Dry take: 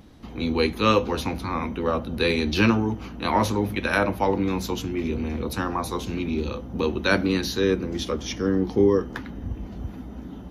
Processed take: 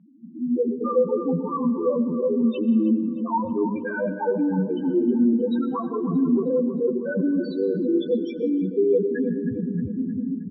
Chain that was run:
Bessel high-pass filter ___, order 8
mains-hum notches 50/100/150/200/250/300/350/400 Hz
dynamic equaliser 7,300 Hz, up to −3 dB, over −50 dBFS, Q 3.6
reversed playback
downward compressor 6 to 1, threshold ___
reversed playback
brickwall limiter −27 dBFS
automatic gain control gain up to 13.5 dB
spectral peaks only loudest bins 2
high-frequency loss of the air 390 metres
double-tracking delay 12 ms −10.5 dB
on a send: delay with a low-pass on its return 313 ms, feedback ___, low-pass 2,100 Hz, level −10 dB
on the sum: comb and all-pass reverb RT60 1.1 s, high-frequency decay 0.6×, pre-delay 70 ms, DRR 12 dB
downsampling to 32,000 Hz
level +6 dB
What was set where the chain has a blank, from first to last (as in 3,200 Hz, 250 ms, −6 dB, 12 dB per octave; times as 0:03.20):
180 Hz, −32 dBFS, 48%